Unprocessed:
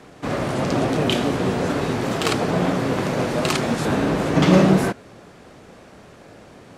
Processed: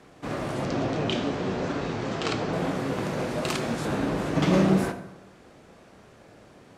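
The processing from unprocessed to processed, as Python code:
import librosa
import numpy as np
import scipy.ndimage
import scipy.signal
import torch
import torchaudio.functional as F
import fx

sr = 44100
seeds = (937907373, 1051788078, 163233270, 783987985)

y = fx.lowpass(x, sr, hz=6800.0, slope=24, at=(0.65, 2.53))
y = fx.rev_plate(y, sr, seeds[0], rt60_s=0.9, hf_ratio=0.65, predelay_ms=0, drr_db=8.0)
y = y * librosa.db_to_amplitude(-7.5)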